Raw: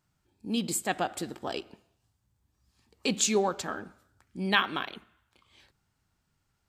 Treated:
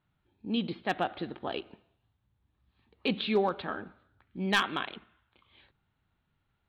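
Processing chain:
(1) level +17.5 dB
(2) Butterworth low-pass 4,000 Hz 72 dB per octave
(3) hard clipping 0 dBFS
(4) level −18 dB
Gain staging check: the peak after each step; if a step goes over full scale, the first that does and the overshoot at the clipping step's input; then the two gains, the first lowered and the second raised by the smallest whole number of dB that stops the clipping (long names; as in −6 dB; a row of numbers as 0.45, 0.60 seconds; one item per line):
+9.5, +9.0, 0.0, −18.0 dBFS
step 1, 9.0 dB
step 1 +8.5 dB, step 4 −9 dB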